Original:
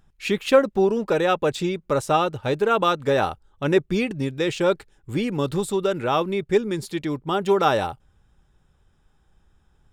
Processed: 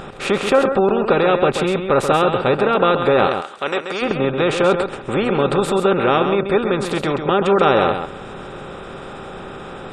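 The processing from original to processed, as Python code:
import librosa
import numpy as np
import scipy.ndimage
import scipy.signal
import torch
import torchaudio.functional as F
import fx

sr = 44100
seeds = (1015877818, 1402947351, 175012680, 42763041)

y = fx.bin_compress(x, sr, power=0.4)
y = fx.highpass(y, sr, hz=970.0, slope=6, at=(3.27, 4.01), fade=0.02)
y = fx.spec_gate(y, sr, threshold_db=-30, keep='strong')
y = y + 10.0 ** (-7.5 / 20.0) * np.pad(y, (int(133 * sr / 1000.0), 0))[:len(y)]
y = F.gain(torch.from_numpy(y), -1.0).numpy()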